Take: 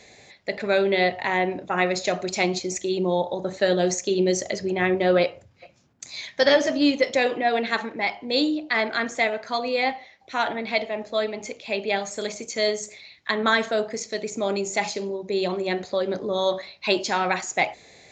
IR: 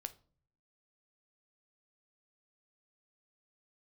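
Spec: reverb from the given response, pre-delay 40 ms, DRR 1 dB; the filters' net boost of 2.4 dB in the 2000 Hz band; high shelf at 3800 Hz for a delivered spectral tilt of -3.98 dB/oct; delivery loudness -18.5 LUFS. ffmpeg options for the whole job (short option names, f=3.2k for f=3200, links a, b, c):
-filter_complex "[0:a]equalizer=f=2k:t=o:g=4,highshelf=f=3.8k:g=-5.5,asplit=2[a][b];[1:a]atrim=start_sample=2205,adelay=40[c];[b][c]afir=irnorm=-1:irlink=0,volume=2dB[d];[a][d]amix=inputs=2:normalize=0,volume=3dB"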